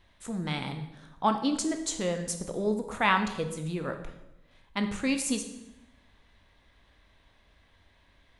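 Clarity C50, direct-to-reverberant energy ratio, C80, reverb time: 9.0 dB, 6.0 dB, 11.0 dB, 0.90 s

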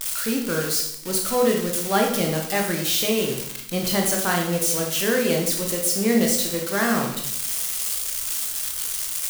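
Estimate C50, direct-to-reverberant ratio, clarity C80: 4.5 dB, 0.0 dB, 8.0 dB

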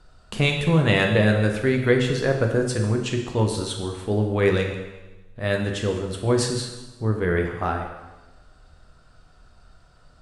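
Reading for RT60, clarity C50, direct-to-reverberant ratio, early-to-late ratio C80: 1.1 s, 5.5 dB, 2.0 dB, 7.5 dB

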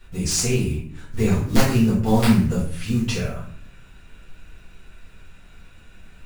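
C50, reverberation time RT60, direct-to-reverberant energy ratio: 4.5 dB, 0.55 s, −8.5 dB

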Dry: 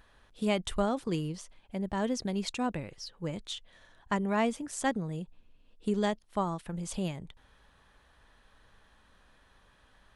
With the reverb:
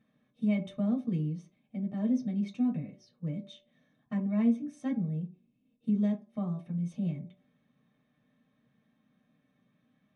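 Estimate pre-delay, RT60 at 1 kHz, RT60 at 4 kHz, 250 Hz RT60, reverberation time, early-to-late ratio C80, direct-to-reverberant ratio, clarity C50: 3 ms, 0.50 s, 0.20 s, 0.40 s, 0.55 s, 16.0 dB, −4.0 dB, 13.0 dB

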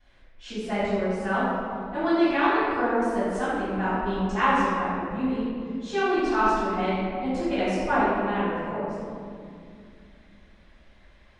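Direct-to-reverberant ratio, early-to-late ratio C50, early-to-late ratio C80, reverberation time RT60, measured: −20.0 dB, −4.5 dB, −1.5 dB, 2.4 s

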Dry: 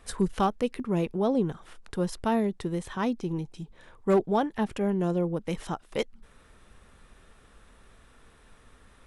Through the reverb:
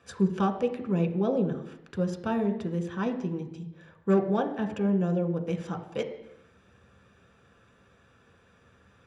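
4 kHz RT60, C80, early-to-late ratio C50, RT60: 0.90 s, 12.0 dB, 10.0 dB, 0.85 s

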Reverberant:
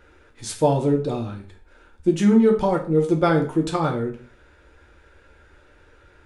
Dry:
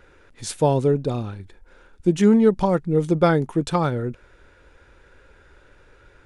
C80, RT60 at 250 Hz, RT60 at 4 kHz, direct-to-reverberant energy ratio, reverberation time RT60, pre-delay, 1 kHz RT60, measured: 15.0 dB, 0.45 s, 0.35 s, 1.0 dB, 0.40 s, 3 ms, 0.40 s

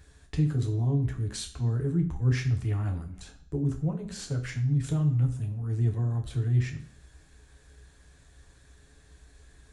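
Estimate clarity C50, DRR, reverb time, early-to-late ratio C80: 11.5 dB, 3.0 dB, 0.55 s, 15.5 dB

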